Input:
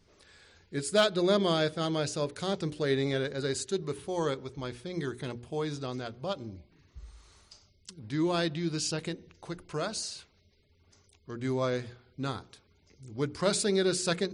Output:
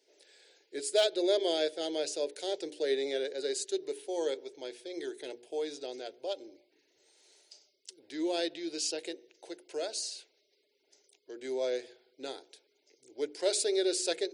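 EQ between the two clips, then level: high-pass 300 Hz 24 dB/octave; static phaser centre 480 Hz, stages 4; 0.0 dB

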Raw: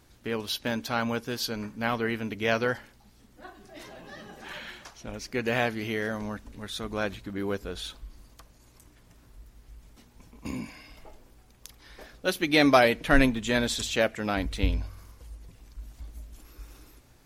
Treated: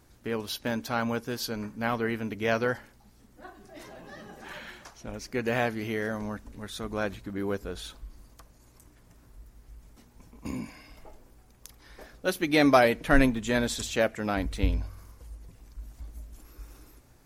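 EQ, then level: peaking EQ 3.3 kHz -5 dB 1.3 oct; 0.0 dB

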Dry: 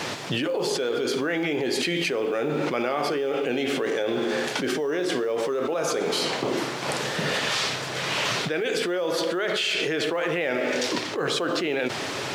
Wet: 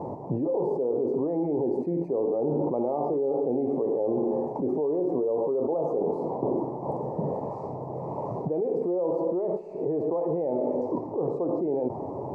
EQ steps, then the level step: elliptic low-pass 930 Hz, stop band 40 dB; bass shelf 66 Hz +7.5 dB; 0.0 dB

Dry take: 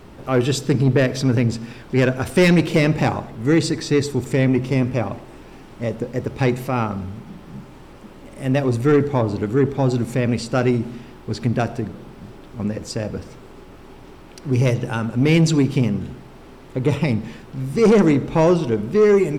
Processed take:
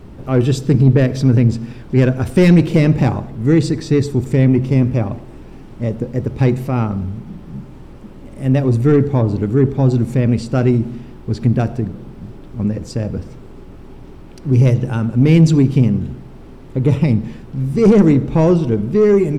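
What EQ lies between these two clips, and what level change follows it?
bass shelf 370 Hz +12 dB; -3.5 dB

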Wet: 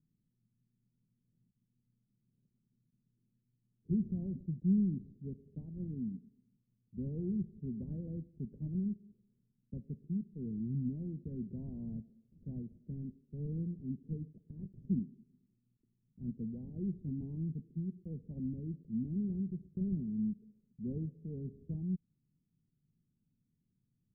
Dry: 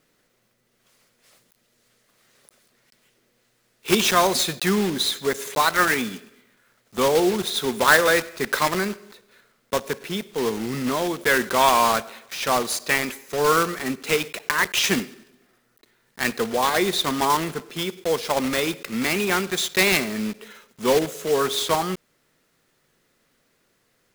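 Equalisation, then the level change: inverse Chebyshev low-pass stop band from 1.1 kHz, stop band 80 dB; bass shelf 97 Hz -9.5 dB; +1.5 dB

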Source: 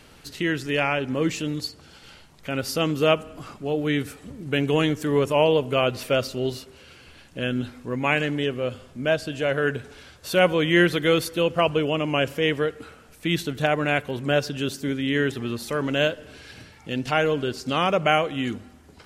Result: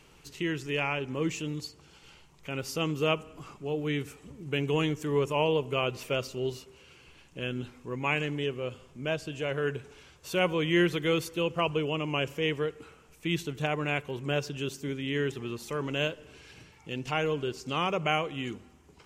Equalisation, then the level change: rippled EQ curve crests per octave 0.73, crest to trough 6 dB; -7.5 dB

